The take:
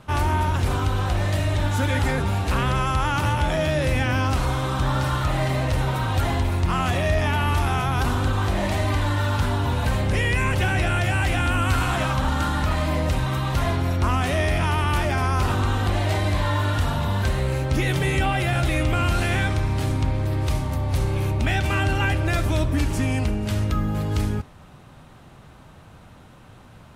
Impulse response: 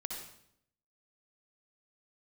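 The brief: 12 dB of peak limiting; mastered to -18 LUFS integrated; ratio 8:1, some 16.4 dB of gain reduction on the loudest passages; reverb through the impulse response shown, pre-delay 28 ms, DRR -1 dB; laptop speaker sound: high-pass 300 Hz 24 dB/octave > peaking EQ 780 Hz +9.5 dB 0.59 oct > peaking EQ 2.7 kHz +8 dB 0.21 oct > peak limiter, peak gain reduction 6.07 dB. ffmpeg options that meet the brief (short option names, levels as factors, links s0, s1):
-filter_complex "[0:a]acompressor=threshold=0.0178:ratio=8,alimiter=level_in=3.55:limit=0.0631:level=0:latency=1,volume=0.282,asplit=2[s0][s1];[1:a]atrim=start_sample=2205,adelay=28[s2];[s1][s2]afir=irnorm=-1:irlink=0,volume=1.12[s3];[s0][s3]amix=inputs=2:normalize=0,highpass=f=300:w=0.5412,highpass=f=300:w=1.3066,equalizer=f=780:t=o:w=0.59:g=9.5,equalizer=f=2700:t=o:w=0.21:g=8,volume=14.1,alimiter=limit=0.398:level=0:latency=1"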